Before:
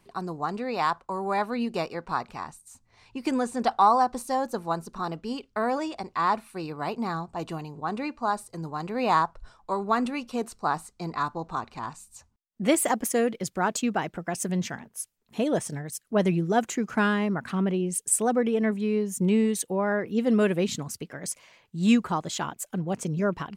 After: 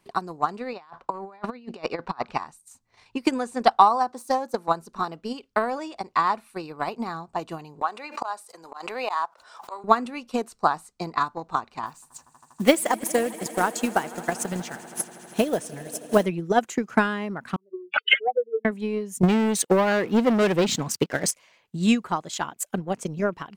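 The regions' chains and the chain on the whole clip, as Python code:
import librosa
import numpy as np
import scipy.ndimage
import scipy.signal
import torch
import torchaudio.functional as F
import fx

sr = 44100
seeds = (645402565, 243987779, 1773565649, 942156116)

y = fx.chain(x, sr, fx.lowpass(hz=5100.0, slope=12),
    fx.over_compress(threshold_db=-34.0, ratio=-0.5), at=(0.73, 2.38))
y = fx.chain(y, sr, fx.self_delay(depth_ms=0.051),
    fx.highpass(hz=170.0, slope=12),
    fx.peak_eq(hz=2700.0, db=-4.5, octaves=0.74), at=(4.11, 4.68))
y = fx.chain(y, sr, fx.highpass(hz=570.0, slope=12),
    fx.auto_swell(attack_ms=155.0),
    fx.pre_swell(db_per_s=43.0), at=(7.81, 9.84))
y = fx.chain(y, sr, fx.block_float(bits=5),
    fx.echo_swell(ms=80, loudest=5, wet_db=-18.0), at=(11.86, 16.26))
y = fx.chain(y, sr, fx.spec_expand(power=3.5),
    fx.steep_highpass(hz=430.0, slope=36),
    fx.resample_bad(factor=4, down='none', up='filtered'), at=(17.56, 18.65))
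y = fx.chain(y, sr, fx.highpass(hz=66.0, slope=12),
    fx.peak_eq(hz=11000.0, db=-11.5, octaves=0.41),
    fx.leveller(passes=3), at=(19.23, 21.31))
y = fx.low_shelf(y, sr, hz=150.0, db=-9.0)
y = fx.transient(y, sr, attack_db=11, sustain_db=-1)
y = y * librosa.db_to_amplitude(-2.0)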